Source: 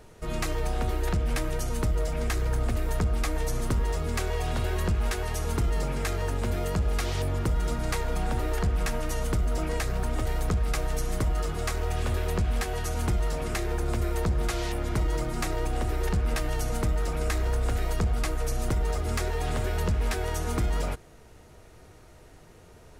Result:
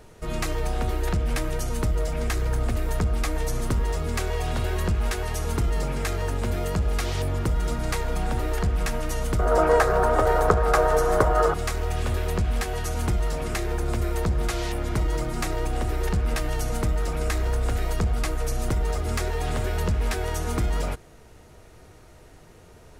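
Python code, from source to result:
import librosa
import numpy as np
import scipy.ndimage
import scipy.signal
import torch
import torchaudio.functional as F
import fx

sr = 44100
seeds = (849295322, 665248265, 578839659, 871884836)

y = fx.band_shelf(x, sr, hz=790.0, db=14.0, octaves=2.4, at=(9.39, 11.54))
y = y * librosa.db_to_amplitude(2.0)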